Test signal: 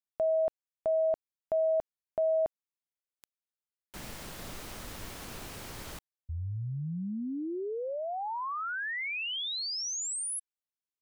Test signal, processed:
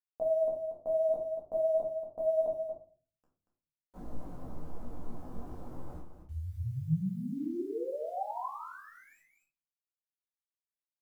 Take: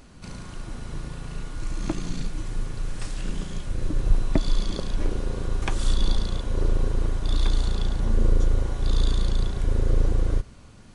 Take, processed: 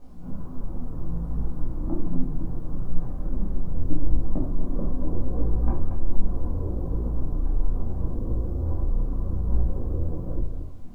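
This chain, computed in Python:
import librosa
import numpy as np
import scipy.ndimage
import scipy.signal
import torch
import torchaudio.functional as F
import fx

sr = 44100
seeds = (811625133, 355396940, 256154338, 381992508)

p1 = scipy.signal.sosfilt(scipy.signal.butter(4, 1000.0, 'lowpass', fs=sr, output='sos'), x)
p2 = fx.over_compress(p1, sr, threshold_db=-26.0, ratio=-1.0)
p3 = p1 + F.gain(torch.from_numpy(p2), -2.5).numpy()
p4 = fx.quant_dither(p3, sr, seeds[0], bits=10, dither='none')
p5 = p4 + fx.echo_single(p4, sr, ms=233, db=-8.0, dry=0)
p6 = fx.room_shoebox(p5, sr, seeds[1], volume_m3=260.0, walls='furnished', distance_m=2.0)
p7 = fx.detune_double(p6, sr, cents=25)
y = F.gain(torch.from_numpy(p7), -7.0).numpy()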